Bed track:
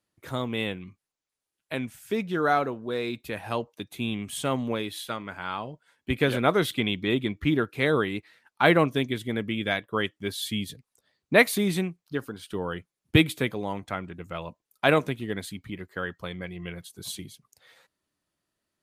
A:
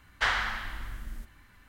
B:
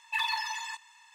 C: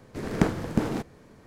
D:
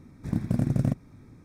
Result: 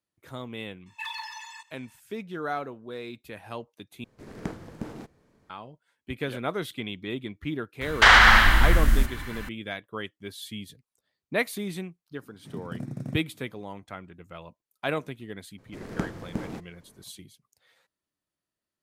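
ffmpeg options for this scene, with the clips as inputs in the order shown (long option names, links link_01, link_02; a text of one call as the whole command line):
ffmpeg -i bed.wav -i cue0.wav -i cue1.wav -i cue2.wav -i cue3.wav -filter_complex "[3:a]asplit=2[link_01][link_02];[0:a]volume=-8dB[link_03];[1:a]alimiter=level_in=23dB:limit=-1dB:release=50:level=0:latency=1[link_04];[4:a]highpass=frequency=120:width=0.5412,highpass=frequency=120:width=1.3066[link_05];[link_03]asplit=2[link_06][link_07];[link_06]atrim=end=4.044[link_08];[link_01]atrim=end=1.46,asetpts=PTS-STARTPTS,volume=-11.5dB[link_09];[link_07]atrim=start=5.496[link_10];[2:a]atrim=end=1.14,asetpts=PTS-STARTPTS,volume=-6dB,afade=type=in:duration=0.004:curve=hsin,afade=type=out:start_time=1.136:duration=0.004:curve=hsin,adelay=860[link_11];[link_04]atrim=end=1.68,asetpts=PTS-STARTPTS,volume=-3dB,afade=type=in:duration=0.004:curve=hsin,afade=type=out:start_time=1.676:duration=0.004:curve=hsin,adelay=7810[link_12];[link_05]atrim=end=1.44,asetpts=PTS-STARTPTS,volume=-9.5dB,afade=type=in:duration=0.004:curve=hsin,afade=type=out:start_time=1.436:duration=0.004:curve=hsin,adelay=12210[link_13];[link_02]atrim=end=1.46,asetpts=PTS-STARTPTS,volume=-8dB,afade=type=in:duration=0.004:curve=hsin,afade=type=out:start_time=1.456:duration=0.004:curve=hsin,adelay=15580[link_14];[link_08][link_09]acrossfade=duration=0.004:curve1=hsin:curve2=hsin[link_15];[link_15][link_10]acrossfade=duration=0.004:curve1=hsin:curve2=hsin[link_16];[link_16][link_11][link_12][link_13][link_14]amix=inputs=5:normalize=0" out.wav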